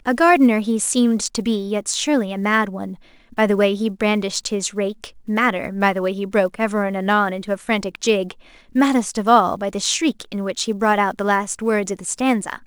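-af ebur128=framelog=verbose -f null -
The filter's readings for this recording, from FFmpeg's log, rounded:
Integrated loudness:
  I:         -19.3 LUFS
  Threshold: -29.6 LUFS
Loudness range:
  LRA:         1.9 LU
  Threshold: -40.0 LUFS
  LRA low:   -20.8 LUFS
  LRA high:  -18.9 LUFS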